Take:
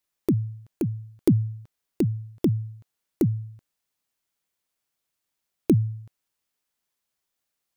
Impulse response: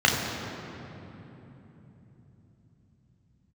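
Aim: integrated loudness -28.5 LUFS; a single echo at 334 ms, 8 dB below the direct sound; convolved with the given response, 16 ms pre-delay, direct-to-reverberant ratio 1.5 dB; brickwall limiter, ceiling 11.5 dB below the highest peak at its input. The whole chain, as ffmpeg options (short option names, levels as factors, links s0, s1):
-filter_complex "[0:a]alimiter=limit=0.106:level=0:latency=1,aecho=1:1:334:0.398,asplit=2[s0][s1];[1:a]atrim=start_sample=2205,adelay=16[s2];[s1][s2]afir=irnorm=-1:irlink=0,volume=0.1[s3];[s0][s3]amix=inputs=2:normalize=0,volume=0.891"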